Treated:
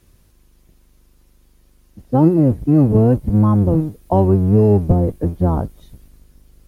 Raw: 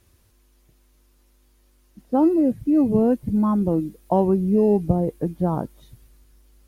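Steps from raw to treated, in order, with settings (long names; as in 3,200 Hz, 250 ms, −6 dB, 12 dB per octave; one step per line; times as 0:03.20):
sub-octave generator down 1 octave, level +2 dB
level +3 dB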